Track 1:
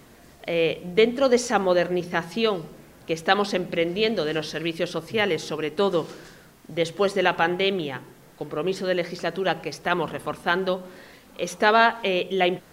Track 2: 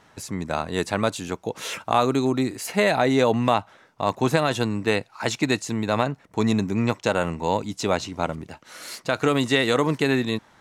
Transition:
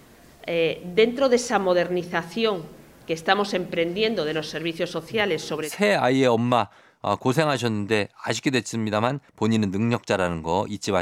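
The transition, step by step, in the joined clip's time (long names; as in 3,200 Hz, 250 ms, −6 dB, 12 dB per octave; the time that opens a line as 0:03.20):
track 1
0:05.20–0:05.73: multiband upward and downward compressor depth 40%
0:05.66: continue with track 2 from 0:02.62, crossfade 0.14 s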